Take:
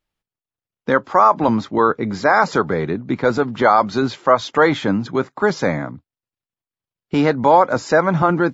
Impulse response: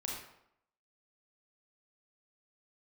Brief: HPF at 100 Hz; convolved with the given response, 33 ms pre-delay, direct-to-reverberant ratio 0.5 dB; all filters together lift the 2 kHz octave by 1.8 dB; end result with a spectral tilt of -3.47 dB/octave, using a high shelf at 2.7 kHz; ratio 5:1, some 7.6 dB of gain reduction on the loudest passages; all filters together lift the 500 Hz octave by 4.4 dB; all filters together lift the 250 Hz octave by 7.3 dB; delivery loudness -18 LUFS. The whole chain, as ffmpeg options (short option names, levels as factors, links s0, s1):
-filter_complex "[0:a]highpass=100,equalizer=f=250:t=o:g=8.5,equalizer=f=500:t=o:g=3,equalizer=f=2000:t=o:g=3.5,highshelf=f=2700:g=-3.5,acompressor=threshold=0.2:ratio=5,asplit=2[s0][s1];[1:a]atrim=start_sample=2205,adelay=33[s2];[s1][s2]afir=irnorm=-1:irlink=0,volume=0.841[s3];[s0][s3]amix=inputs=2:normalize=0,volume=0.841"